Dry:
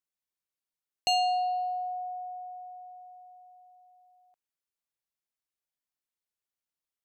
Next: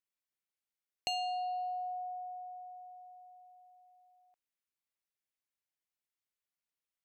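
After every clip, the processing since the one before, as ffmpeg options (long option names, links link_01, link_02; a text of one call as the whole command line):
ffmpeg -i in.wav -af "acompressor=threshold=-30dB:ratio=6,equalizer=frequency=2200:width=1.5:gain=4.5,volume=-4.5dB" out.wav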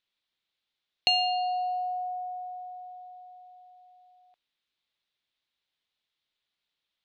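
ffmpeg -i in.wav -af "lowpass=frequency=3700:width_type=q:width=3.9,volume=7dB" out.wav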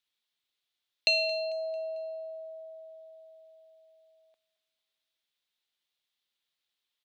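ffmpeg -i in.wav -af "bass=frequency=250:gain=-8,treble=frequency=4000:gain=7,afreqshift=-86,aecho=1:1:223|446|669|892:0.112|0.0516|0.0237|0.0109,volume=-3.5dB" out.wav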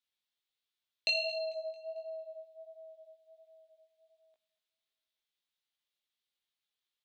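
ffmpeg -i in.wav -af "flanger=delay=17:depth=4.1:speed=1.4,volume=-2.5dB" out.wav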